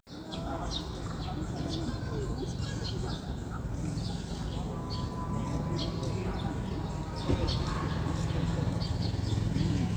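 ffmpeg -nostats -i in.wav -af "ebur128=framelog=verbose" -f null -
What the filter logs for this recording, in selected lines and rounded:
Integrated loudness:
  I:         -34.0 LUFS
  Threshold: -44.0 LUFS
Loudness range:
  LRA:         3.5 LU
  Threshold: -54.3 LUFS
  LRA low:   -35.8 LUFS
  LRA high:  -32.3 LUFS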